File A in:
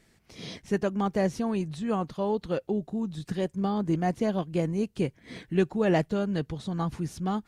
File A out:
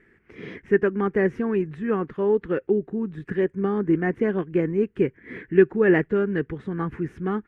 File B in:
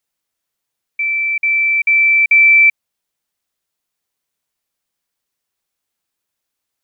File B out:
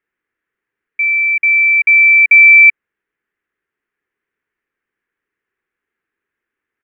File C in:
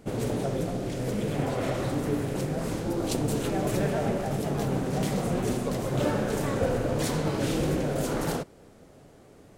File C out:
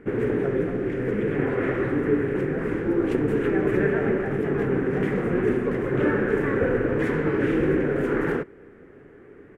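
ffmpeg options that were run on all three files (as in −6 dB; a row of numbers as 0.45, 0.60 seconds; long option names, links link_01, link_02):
-af "firequalizer=gain_entry='entry(160,0);entry(400,11);entry(620,-6);entry(1700,12);entry(4100,-20)':delay=0.05:min_phase=1"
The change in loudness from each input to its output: +5.5, +3.5, +4.5 LU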